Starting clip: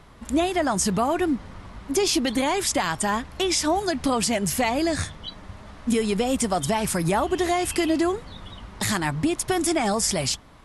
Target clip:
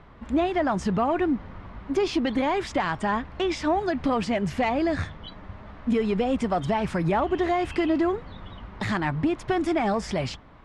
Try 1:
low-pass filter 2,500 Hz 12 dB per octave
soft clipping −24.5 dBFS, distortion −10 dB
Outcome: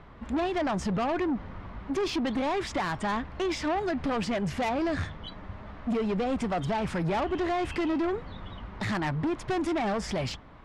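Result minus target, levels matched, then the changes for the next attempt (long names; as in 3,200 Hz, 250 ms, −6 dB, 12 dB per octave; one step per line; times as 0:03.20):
soft clipping: distortion +15 dB
change: soft clipping −13 dBFS, distortion −25 dB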